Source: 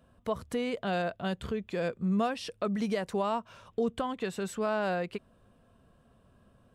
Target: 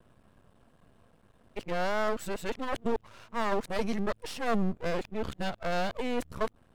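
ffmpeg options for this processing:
-af "areverse,aeval=exprs='max(val(0),0)':c=same,volume=4.5dB"

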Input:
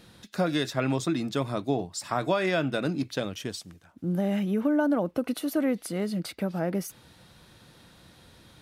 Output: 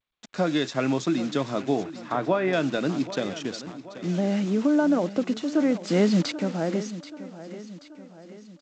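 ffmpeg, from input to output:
-filter_complex "[0:a]adynamicequalizer=threshold=0.0141:dfrequency=250:dqfactor=0.76:tfrequency=250:tqfactor=0.76:attack=5:release=100:ratio=0.375:range=1.5:mode=boostabove:tftype=bell,acrusher=bits=6:mix=0:aa=0.000001,asettb=1/sr,asplit=3[a][b][c];[a]atrim=end=1.834[d];[b]atrim=start=1.83:end=2.53,asetpts=PTS-STARTPTS,afade=t=in:d=0.004:c=qsin,afade=t=out:st=0.696:d=0.004:c=qsin,lowpass=2.2k[e];[c]atrim=start=2.526[f];[d][e]acrossfade=d=0.004:c1=hsin:c2=qsin[g];[g][f]acrossfade=d=0.004:c1=qsin:c2=hsin,asettb=1/sr,asplit=3[h][i][j];[h]atrim=end=5.874[k];[i]atrim=start=5.87:end=6.32,asetpts=PTS-STARTPTS,afade=t=in:d=0.004:c=qsin,afade=t=out:st=0.446:d=0.004:c=qsin,acontrast=88[l];[j]atrim=start=6.316[m];[k][l]acrossfade=d=0.004:c1=hsin:c2=qsin[n];[n][m]acrossfade=d=0.004:c1=qsin:c2=hsin,highpass=160,aecho=1:1:782|1564|2346|3128|3910:0.188|0.0942|0.0471|0.0235|0.0118,volume=1dB" -ar 16000 -c:a g722

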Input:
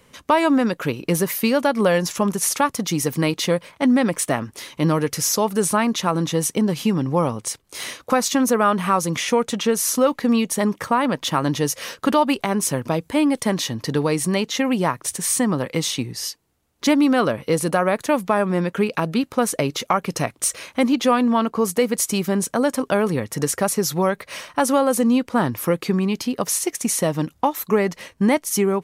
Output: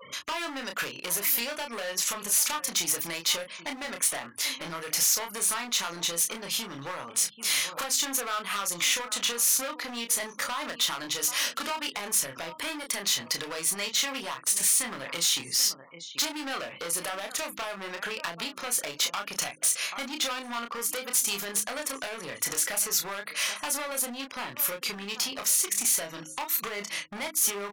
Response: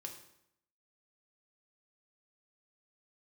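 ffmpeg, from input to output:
-filter_complex "[0:a]highpass=86,bandreject=f=50:t=h:w=6,bandreject=f=100:t=h:w=6,bandreject=f=150:t=h:w=6,bandreject=f=200:t=h:w=6,bandreject=f=250:t=h:w=6,bandreject=f=300:t=h:w=6,asplit=2[a][b];[b]adelay=816,lowpass=f=3.7k:p=1,volume=-21dB,asplit=2[c][d];[d]adelay=816,lowpass=f=3.7k:p=1,volume=0.2[e];[a][c][e]amix=inputs=3:normalize=0,acompressor=threshold=-24dB:ratio=8,adynamicequalizer=threshold=0.00891:dfrequency=180:dqfactor=0.9:tfrequency=180:tqfactor=0.9:attack=5:release=100:ratio=0.375:range=2:mode=cutabove:tftype=bell,afftfilt=real='re*gte(hypot(re,im),0.00355)':imag='im*gte(hypot(re,im),0.00355)':win_size=1024:overlap=0.75,asoftclip=type=hard:threshold=-27.5dB,tiltshelf=f=780:g=-10,asplit=2[f][g];[g]adelay=31,volume=-5.5dB[h];[f][h]amix=inputs=2:normalize=0,asetrate=45864,aresample=44100,acompressor=mode=upward:threshold=-33dB:ratio=2.5,volume=-3dB"

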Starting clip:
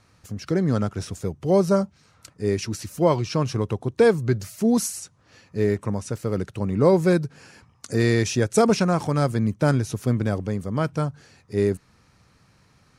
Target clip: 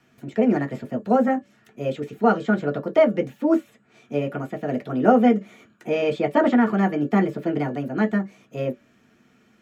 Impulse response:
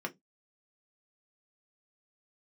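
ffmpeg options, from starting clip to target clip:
-filter_complex "[0:a]bandreject=f=423.7:t=h:w=4,bandreject=f=847.4:t=h:w=4,bandreject=f=1.2711k:t=h:w=4,bandreject=f=1.6948k:t=h:w=4,bandreject=f=2.1185k:t=h:w=4,bandreject=f=2.5422k:t=h:w=4,bandreject=f=2.9659k:t=h:w=4,bandreject=f=3.3896k:t=h:w=4,bandreject=f=3.8133k:t=h:w=4,bandreject=f=4.237k:t=h:w=4,bandreject=f=4.6607k:t=h:w=4,bandreject=f=5.0844k:t=h:w=4,bandreject=f=5.5081k:t=h:w=4,bandreject=f=5.9318k:t=h:w=4,bandreject=f=6.3555k:t=h:w=4,bandreject=f=6.7792k:t=h:w=4,acrossover=split=230|440|2900[a][b][c][d];[d]acompressor=threshold=-52dB:ratio=12[e];[a][b][c][e]amix=inputs=4:normalize=0[f];[1:a]atrim=start_sample=2205,atrim=end_sample=3528,asetrate=40131,aresample=44100[g];[f][g]afir=irnorm=-1:irlink=0,asetrate=59535,aresample=44100,volume=-4dB"

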